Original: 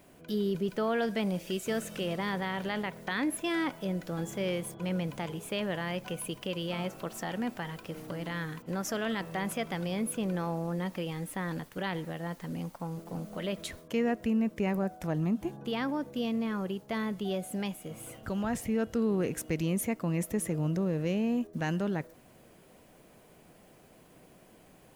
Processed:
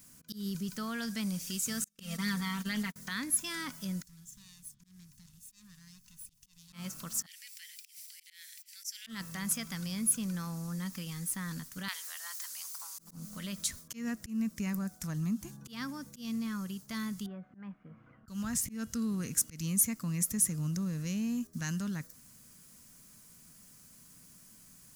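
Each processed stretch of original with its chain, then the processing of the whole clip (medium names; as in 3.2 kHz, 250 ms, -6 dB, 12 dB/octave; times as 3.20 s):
1.84–2.96 s: gate -37 dBFS, range -40 dB + comb 4.4 ms, depth 90%
4.02–6.73 s: comb filter that takes the minimum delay 1.1 ms + amplifier tone stack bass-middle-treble 6-0-2
7.26–9.07 s: elliptic high-pass 2.1 kHz, stop band 60 dB + band-stop 6.6 kHz, Q 11
11.88–12.99 s: high-pass 760 Hz 24 dB/octave + treble shelf 2.1 kHz +8.5 dB
17.26–18.28 s: inverse Chebyshev low-pass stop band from 8.8 kHz, stop band 80 dB + bass shelf 170 Hz -10.5 dB
whole clip: high-order bell 530 Hz -14.5 dB; slow attack 145 ms; resonant high shelf 4.1 kHz +11.5 dB, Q 1.5; trim -2.5 dB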